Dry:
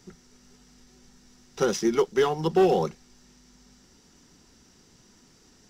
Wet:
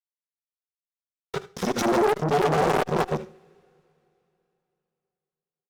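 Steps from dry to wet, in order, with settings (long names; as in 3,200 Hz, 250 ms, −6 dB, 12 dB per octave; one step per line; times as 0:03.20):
harmonic-percussive split with one part muted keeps harmonic
granular cloud, grains 20 per second, spray 317 ms, pitch spread up and down by 0 semitones
fuzz pedal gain 34 dB, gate −43 dBFS
single-tap delay 77 ms −18 dB
coupled-rooms reverb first 0.44 s, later 3.2 s, from −27 dB, DRR 14.5 dB
saturating transformer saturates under 840 Hz
level −1.5 dB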